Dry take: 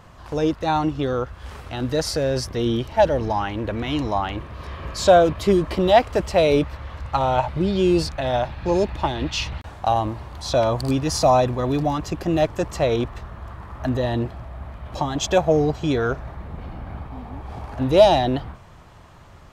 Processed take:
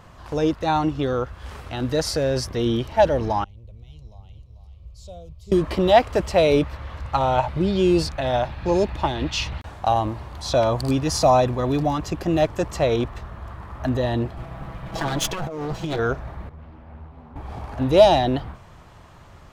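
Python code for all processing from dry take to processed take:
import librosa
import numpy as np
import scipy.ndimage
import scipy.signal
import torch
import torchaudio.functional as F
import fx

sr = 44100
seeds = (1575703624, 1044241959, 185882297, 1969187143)

y = fx.chain(x, sr, fx.tone_stack(knobs='10-0-1'),
    fx.fixed_phaser(hz=680.0, stages=4),
    fx.echo_single(ms=441, db=-9.0), at=(3.44, 5.52))
y = fx.chain(y, sr, fx.lower_of_two(delay_ms=6.1),
    fx.over_compress(threshold_db=-26.0, ratio=-1.0), at=(14.37, 15.99))
y = fx.chain(y, sr, fx.high_shelf(hz=3900.0, db=-9.5),
    fx.stiff_resonator(f0_hz=78.0, decay_s=0.31, stiffness=0.002),
    fx.doppler_dist(depth_ms=0.67), at=(16.49, 17.36))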